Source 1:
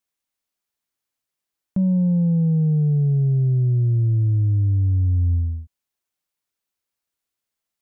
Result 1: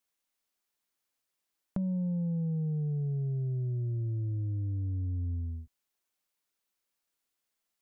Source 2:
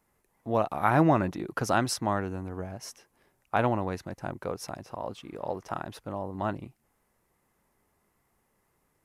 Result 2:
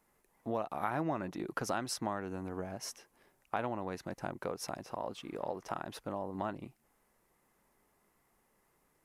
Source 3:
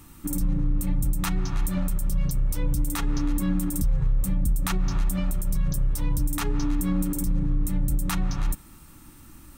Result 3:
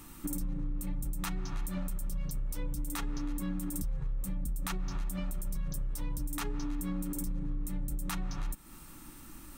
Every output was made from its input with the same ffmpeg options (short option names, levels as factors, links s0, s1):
-af "equalizer=f=87:t=o:w=1.3:g=-8,acompressor=threshold=0.02:ratio=3"